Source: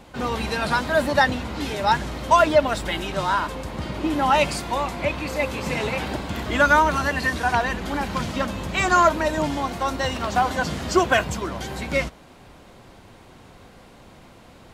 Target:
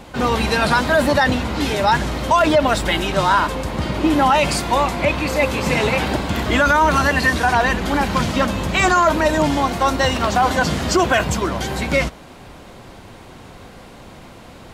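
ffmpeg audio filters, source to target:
ffmpeg -i in.wav -af "alimiter=limit=-14dB:level=0:latency=1:release=18,volume=7.5dB" out.wav

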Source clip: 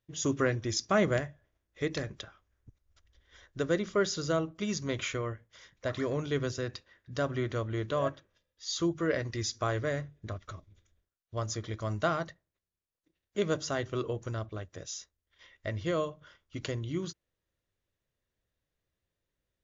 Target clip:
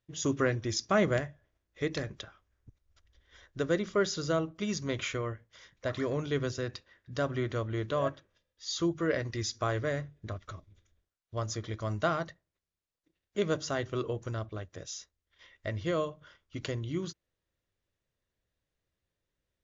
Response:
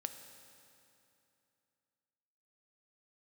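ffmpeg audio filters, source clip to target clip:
-af "lowpass=7900"

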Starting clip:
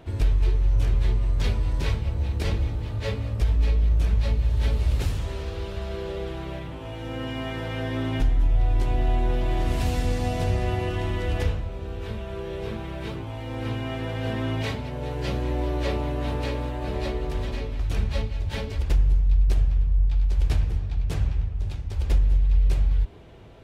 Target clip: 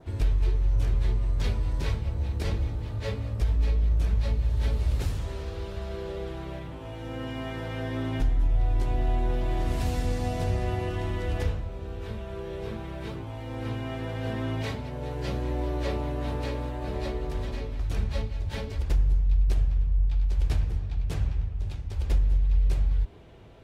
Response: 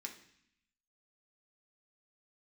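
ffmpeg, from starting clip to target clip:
-af "adynamicequalizer=threshold=0.002:dfrequency=2800:dqfactor=1.7:tfrequency=2800:tqfactor=1.7:attack=5:release=100:ratio=0.375:range=1.5:mode=cutabove:tftype=bell,volume=-3dB"

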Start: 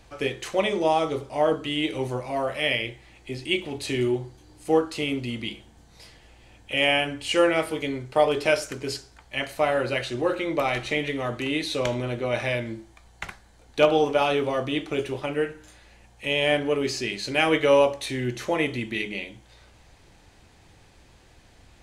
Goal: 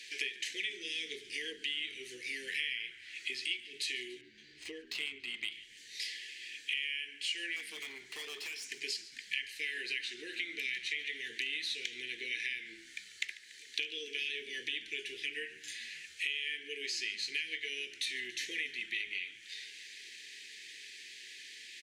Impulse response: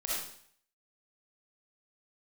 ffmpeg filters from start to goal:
-filter_complex "[0:a]asuperstop=centerf=880:order=20:qfactor=0.7,equalizer=frequency=3000:width=0.3:gain=13,acompressor=threshold=-34dB:ratio=12,asettb=1/sr,asplit=3[link_01][link_02][link_03];[link_01]atrim=end=7.564[link_04];[link_02]atrim=start=7.56:end=8.67,asetpts=PTS-STARTPTS,afade=type=in:duration=0.004:curve=qsin,afade=type=out:start_time=1.106:duration=0.004:curve=qsin,asoftclip=type=hard:threshold=-38.5dB[link_05];[link_03]atrim=start=8.666[link_06];[link_04][link_05]acrossfade=duration=0.004:curve1=hsin:curve2=qsin[link_07];[link_07][link_06]acrossfade=duration=0.004:curve1=qsin:curve2=hsin,highpass=680,asplit=2[link_08][link_09];[link_09]asplit=6[link_10][link_11][link_12][link_13][link_14][link_15];[link_10]adelay=143,afreqshift=-75,volume=-18.5dB[link_16];[link_11]adelay=286,afreqshift=-150,volume=-22.7dB[link_17];[link_12]adelay=429,afreqshift=-225,volume=-26.8dB[link_18];[link_13]adelay=572,afreqshift=-300,volume=-31dB[link_19];[link_14]adelay=715,afreqshift=-375,volume=-35.1dB[link_20];[link_15]adelay=858,afreqshift=-450,volume=-39.3dB[link_21];[link_16][link_17][link_18][link_19][link_20][link_21]amix=inputs=6:normalize=0[link_22];[link_08][link_22]amix=inputs=2:normalize=0,asettb=1/sr,asplit=3[link_23][link_24][link_25];[link_23]atrim=end=4.214[link_26];[link_24]atrim=start=4.21:end=5.52,asetpts=PTS-STARTPTS,afade=type=in:duration=0.004:curve=qsin,afade=type=out:start_time=1.306:duration=0.004:curve=qsin,adynamicsmooth=sensitivity=5.5:basefreq=2800[link_27];[link_25]atrim=start=5.516[link_28];[link_26][link_27]acrossfade=duration=0.004:curve1=hsin:curve2=qsin[link_29];[link_29][link_28]acrossfade=duration=0.004:curve1=qsin:curve2=hsin"

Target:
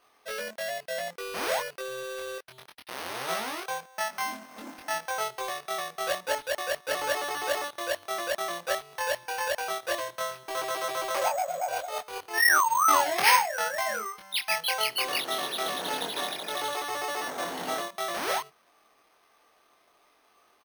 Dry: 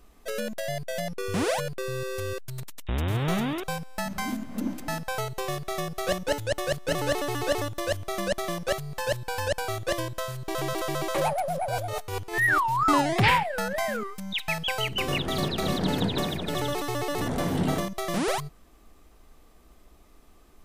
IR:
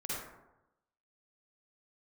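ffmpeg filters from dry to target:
-filter_complex "[0:a]highpass=700,lowpass=4600,asplit=2[link_01][link_02];[link_02]adelay=23,volume=-2.5dB[link_03];[link_01][link_03]amix=inputs=2:normalize=0,acrusher=samples=6:mix=1:aa=0.000001"

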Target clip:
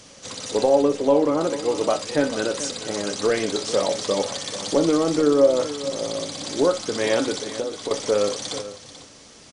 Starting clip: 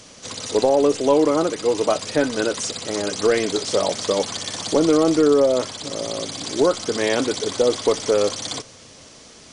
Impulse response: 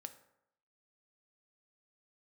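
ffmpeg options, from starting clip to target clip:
-filter_complex "[0:a]asettb=1/sr,asplit=3[link_01][link_02][link_03];[link_01]atrim=end=0.824[link_04];[link_02]atrim=start=0.82:end=1.41,asetpts=PTS-STARTPTS,afade=type=in:duration=0.004:curve=qsin,afade=type=out:start_time=0.586:duration=0.004:curve=qsin,highshelf=frequency=3400:gain=-9[link_05];[link_03]atrim=start=1.406[link_06];[link_04][link_05]acrossfade=duration=0.004:curve1=hsin:curve2=qsin[link_07];[link_07][link_06]acrossfade=duration=0.004:curve1=qsin:curve2=hsin,asettb=1/sr,asplit=3[link_08][link_09][link_10];[link_08]atrim=end=7.384[link_11];[link_09]atrim=start=7.38:end=7.91,asetpts=PTS-STARTPTS,afade=type=in:duration=0.004:curve=qsin,afade=type=out:start_time=0.526:duration=0.004:curve=qsin,acompressor=threshold=-24dB:ratio=6[link_12];[link_10]atrim=start=7.906[link_13];[link_11][link_12]acrossfade=duration=0.004:curve1=hsin:curve2=qsin[link_14];[link_14][link_13]acrossfade=duration=0.004:curve1=qsin:curve2=hsin,aecho=1:1:437:0.2[link_15];[1:a]atrim=start_sample=2205,atrim=end_sample=3528[link_16];[link_15][link_16]afir=irnorm=-1:irlink=0,volume=3dB"

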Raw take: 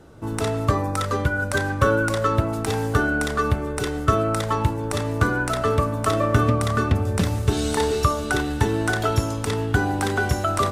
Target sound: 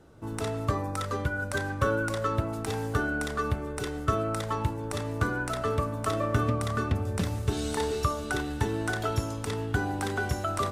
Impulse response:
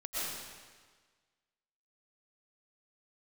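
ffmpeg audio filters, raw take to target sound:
-af "volume=-7.5dB"

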